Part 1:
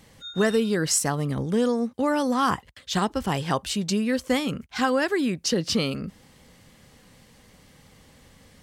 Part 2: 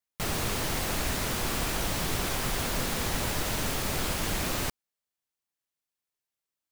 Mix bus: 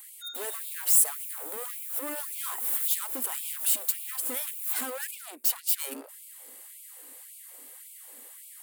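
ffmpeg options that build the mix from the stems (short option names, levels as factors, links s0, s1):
-filter_complex "[0:a]acompressor=threshold=0.0708:ratio=6,asoftclip=type=hard:threshold=0.0224,volume=0.891,asplit=2[s0][s1];[1:a]adelay=150,volume=0.282,asplit=2[s2][s3];[s3]volume=0.119[s4];[s1]apad=whole_len=302622[s5];[s2][s5]sidechaincompress=threshold=0.00282:ratio=5:attack=22:release=110[s6];[s4]aecho=0:1:237:1[s7];[s0][s6][s7]amix=inputs=3:normalize=0,aexciter=amount=13:drive=3.4:freq=8100,afftfilt=real='re*gte(b*sr/1024,220*pow(2200/220,0.5+0.5*sin(2*PI*1.8*pts/sr)))':imag='im*gte(b*sr/1024,220*pow(2200/220,0.5+0.5*sin(2*PI*1.8*pts/sr)))':win_size=1024:overlap=0.75"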